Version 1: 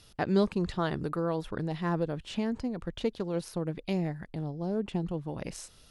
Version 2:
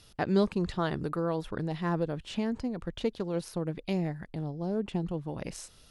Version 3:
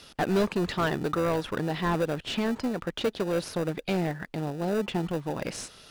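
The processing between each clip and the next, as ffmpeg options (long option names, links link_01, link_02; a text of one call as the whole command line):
ffmpeg -i in.wav -af anull out.wav
ffmpeg -i in.wav -filter_complex "[0:a]asplit=2[link_01][link_02];[link_02]highpass=frequency=720:poles=1,volume=22dB,asoftclip=type=tanh:threshold=-13dB[link_03];[link_01][link_03]amix=inputs=2:normalize=0,lowpass=frequency=3700:poles=1,volume=-6dB,asplit=2[link_04][link_05];[link_05]acrusher=samples=41:mix=1:aa=0.000001,volume=-10dB[link_06];[link_04][link_06]amix=inputs=2:normalize=0,volume=-4dB" out.wav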